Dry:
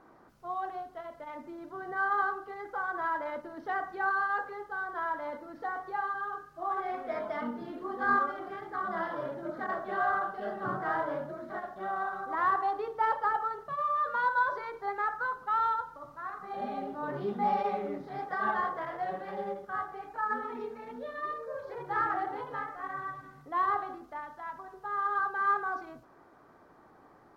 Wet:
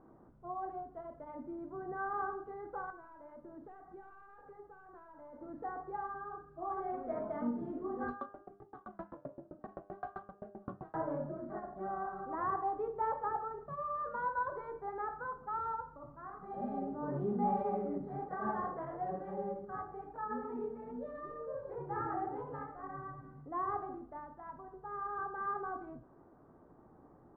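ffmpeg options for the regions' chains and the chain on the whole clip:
ffmpeg -i in.wav -filter_complex "[0:a]asettb=1/sr,asplit=3[link_01][link_02][link_03];[link_01]atrim=end=2.904[link_04];[link_02]atrim=start=2.9:end=5.41,asetpts=PTS-STARTPTS,afade=type=in:duration=0.004:curve=qsin,afade=type=out:start_time=2.506:duration=0.004:curve=qsin,flanger=delay=5:depth=3.4:regen=-73:speed=1.9:shape=sinusoidal,aeval=exprs='(tanh(22.4*val(0)+0.25)-tanh(0.25))/22.4':channel_layout=same,acompressor=threshold=-45dB:ratio=10:attack=3.2:release=140:knee=1:detection=peak[link_05];[link_03]atrim=start=5.406[link_06];[link_04][link_05]acrossfade=duration=0.004:curve1=hsin:curve2=qsin[link_07];[link_07][link_06]acrossfade=duration=0.004:curve1=qsin:curve2=hsin,asettb=1/sr,asplit=3[link_08][link_09][link_10];[link_08]atrim=end=8.084[link_11];[link_09]atrim=start=8.08:end=10.95,asetpts=PTS-STARTPTS,afade=type=in:duration=0.004:curve=qsin,afade=type=out:start_time=2.866:duration=0.004:curve=qsin,adynamicsmooth=sensitivity=3.5:basefreq=820,aeval=exprs='val(0)*pow(10,-38*if(lt(mod(7.7*n/s,1),2*abs(7.7)/1000),1-mod(7.7*n/s,1)/(2*abs(7.7)/1000),(mod(7.7*n/s,1)-2*abs(7.7)/1000)/(1-2*abs(7.7)/1000))/20)':channel_layout=same[link_12];[link_10]atrim=start=10.946[link_13];[link_11][link_12]acrossfade=duration=0.004:curve1=hsin:curve2=qsin[link_14];[link_14][link_13]acrossfade=duration=0.004:curve1=qsin:curve2=hsin,lowpass=1100,lowshelf=frequency=420:gain=11.5,bandreject=frequency=100.5:width_type=h:width=4,bandreject=frequency=201:width_type=h:width=4,bandreject=frequency=301.5:width_type=h:width=4,bandreject=frequency=402:width_type=h:width=4,bandreject=frequency=502.5:width_type=h:width=4,bandreject=frequency=603:width_type=h:width=4,bandreject=frequency=703.5:width_type=h:width=4,bandreject=frequency=804:width_type=h:width=4,bandreject=frequency=904.5:width_type=h:width=4,bandreject=frequency=1005:width_type=h:width=4,bandreject=frequency=1105.5:width_type=h:width=4,bandreject=frequency=1206:width_type=h:width=4,bandreject=frequency=1306.5:width_type=h:width=4,bandreject=frequency=1407:width_type=h:width=4,bandreject=frequency=1507.5:width_type=h:width=4,bandreject=frequency=1608:width_type=h:width=4,bandreject=frequency=1708.5:width_type=h:width=4,bandreject=frequency=1809:width_type=h:width=4,bandreject=frequency=1909.5:width_type=h:width=4,bandreject=frequency=2010:width_type=h:width=4,bandreject=frequency=2110.5:width_type=h:width=4,bandreject=frequency=2211:width_type=h:width=4,bandreject=frequency=2311.5:width_type=h:width=4,bandreject=frequency=2412:width_type=h:width=4,bandreject=frequency=2512.5:width_type=h:width=4,bandreject=frequency=2613:width_type=h:width=4,bandreject=frequency=2713.5:width_type=h:width=4,bandreject=frequency=2814:width_type=h:width=4,bandreject=frequency=2914.5:width_type=h:width=4,bandreject=frequency=3015:width_type=h:width=4,bandreject=frequency=3115.5:width_type=h:width=4,bandreject=frequency=3216:width_type=h:width=4,volume=-6.5dB" out.wav

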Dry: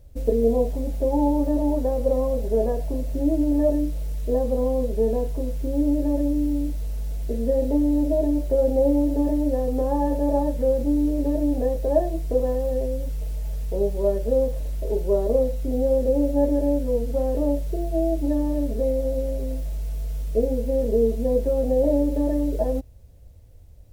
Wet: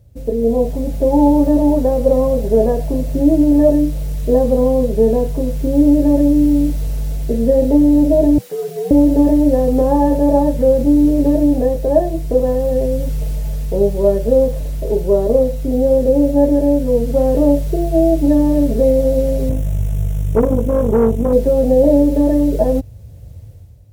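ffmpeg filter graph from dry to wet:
ffmpeg -i in.wav -filter_complex "[0:a]asettb=1/sr,asplit=3[link_01][link_02][link_03];[link_01]atrim=end=8.384[link_04];[link_02]atrim=start=8.38:end=8.91,asetpts=PTS-STARTPTS,afade=type=in:duration=0.004:curve=qsin,afade=type=out:start_time=0.526:duration=0.004:curve=qsin,highpass=1100,afreqshift=-100[link_05];[link_03]atrim=start=8.906[link_06];[link_04][link_05]acrossfade=duration=0.004:curve1=hsin:curve2=qsin[link_07];[link_07][link_06]acrossfade=duration=0.004:curve1=qsin:curve2=hsin,asettb=1/sr,asplit=3[link_08][link_09][link_10];[link_08]atrim=end=19.494[link_11];[link_09]atrim=start=19.49:end=21.33,asetpts=PTS-STARTPTS,afade=type=in:duration=0.004:curve=qsin,afade=type=out:start_time=1.836:duration=0.004:curve=qsin,equalizer=frequency=98:width_type=o:width=0.92:gain=13,aeval=exprs='(tanh(6.31*val(0)+0.55)-tanh(0.55))/6.31':channel_layout=same,asuperstop=centerf=4500:order=4:qfactor=2.3[link_12];[link_10]atrim=start=21.326[link_13];[link_11][link_12]acrossfade=duration=0.004:curve1=hsin:curve2=qsin[link_14];[link_14][link_13]acrossfade=duration=0.004:curve1=qsin:curve2=hsin,highpass=54,equalizer=frequency=120:width_type=o:width=0.94:gain=11.5,dynaudnorm=framelen=110:gausssize=9:maxgain=11.5dB" out.wav

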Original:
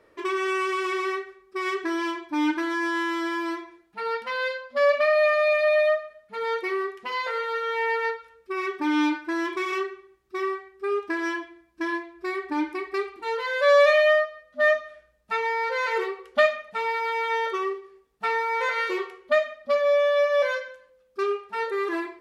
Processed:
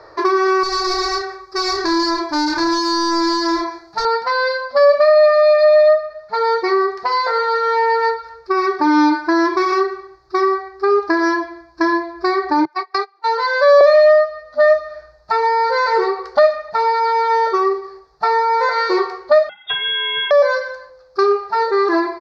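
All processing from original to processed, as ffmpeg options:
ffmpeg -i in.wav -filter_complex "[0:a]asettb=1/sr,asplit=3[link_01][link_02][link_03];[link_01]atrim=end=0.634[link_04];[link_02]atrim=start=0.63:end=4.05,asetpts=PTS-STARTPTS,afade=type=in:duration=0.004:curve=qsin,afade=type=out:start_time=3.416:duration=0.004:curve=qsin,volume=33dB,asoftclip=hard,volume=-33dB,bass=frequency=250:gain=3,treble=frequency=4000:gain=9,asplit=2[link_05][link_06];[link_06]adelay=30,volume=-4.5dB[link_07];[link_05][link_07]amix=inputs=2:normalize=0,atrim=end_sample=150822[link_08];[link_03]atrim=start=4.046[link_09];[link_04][link_08]acrossfade=duration=0.004:curve1=hsin:curve2=qsin[link_10];[link_10][link_09]acrossfade=duration=0.004:curve1=qsin:curve2=hsin,asettb=1/sr,asplit=3[link_11][link_12][link_13];[link_11]atrim=end=12.654[link_14];[link_12]atrim=start=12.65:end=13.81,asetpts=PTS-STARTPTS,afade=type=in:duration=0.004:curve=qsin,afade=type=out:start_time=1.156:duration=0.004:curve=qsin,highpass=frequency=500:width=0.5412,highpass=frequency=500:width=1.3066,agate=range=-25dB:threshold=-35dB:ratio=16:release=100:detection=peak[link_15];[link_13]atrim=start=13.806[link_16];[link_14][link_15]acrossfade=duration=0.004:curve1=hsin:curve2=qsin[link_17];[link_17][link_16]acrossfade=duration=0.004:curve1=qsin:curve2=hsin,asettb=1/sr,asplit=3[link_18][link_19][link_20];[link_18]atrim=end=19.494[link_21];[link_19]atrim=start=19.49:end=20.31,asetpts=PTS-STARTPTS,afade=type=in:duration=0.004:curve=qsin,afade=type=out:start_time=0.816:duration=0.004:curve=qsin,highpass=250,lowpass=frequency=3300:width_type=q:width=0.5098,lowpass=frequency=3300:width_type=q:width=0.6013,lowpass=frequency=3300:width_type=q:width=0.9,lowpass=frequency=3300:width_type=q:width=2.563,afreqshift=-3900[link_22];[link_20]atrim=start=20.306[link_23];[link_21][link_22]acrossfade=duration=0.004:curve1=hsin:curve2=qsin[link_24];[link_24][link_23]acrossfade=duration=0.004:curve1=qsin:curve2=hsin,firequalizer=gain_entry='entry(150,0);entry(220,-21);entry(320,-2);entry(490,-2);entry(720,8);entry(1700,1);entry(3000,-18);entry(4400,12);entry(8600,-21)':delay=0.05:min_phase=1,acrossover=split=440[link_25][link_26];[link_26]acompressor=threshold=-35dB:ratio=3[link_27];[link_25][link_27]amix=inputs=2:normalize=0,alimiter=level_in=16.5dB:limit=-1dB:release=50:level=0:latency=1,volume=-1dB" out.wav

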